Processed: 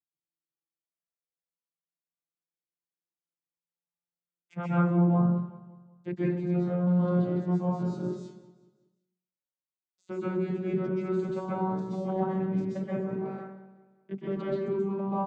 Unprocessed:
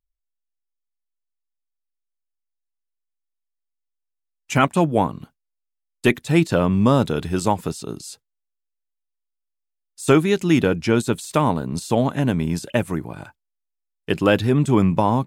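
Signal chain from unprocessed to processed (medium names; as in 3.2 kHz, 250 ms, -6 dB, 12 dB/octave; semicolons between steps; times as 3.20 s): vocoder on a note that slides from E3, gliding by +3 st; treble shelf 3.2 kHz -11 dB; reverse; compression 6:1, threshold -28 dBFS, peak gain reduction 16.5 dB; reverse; feedback delay 188 ms, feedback 45%, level -17 dB; plate-style reverb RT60 0.67 s, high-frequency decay 0.55×, pre-delay 115 ms, DRR -8 dB; trim -4 dB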